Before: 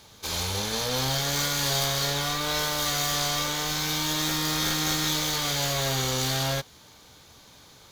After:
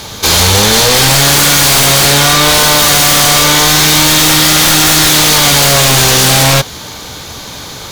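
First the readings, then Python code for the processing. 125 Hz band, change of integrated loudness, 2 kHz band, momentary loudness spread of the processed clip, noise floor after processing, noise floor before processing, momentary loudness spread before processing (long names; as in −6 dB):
+18.0 dB, +20.0 dB, +20.5 dB, 19 LU, −27 dBFS, −53 dBFS, 3 LU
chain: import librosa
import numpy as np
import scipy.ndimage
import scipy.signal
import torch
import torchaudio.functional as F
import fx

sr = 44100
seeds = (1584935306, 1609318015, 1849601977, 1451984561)

y = fx.fold_sine(x, sr, drive_db=14, ceiling_db=-12.5)
y = y * librosa.db_to_amplitude(8.0)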